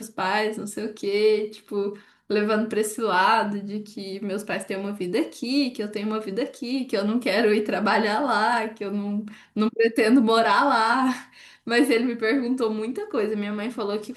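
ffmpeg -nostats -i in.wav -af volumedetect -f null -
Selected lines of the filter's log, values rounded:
mean_volume: -23.8 dB
max_volume: -8.4 dB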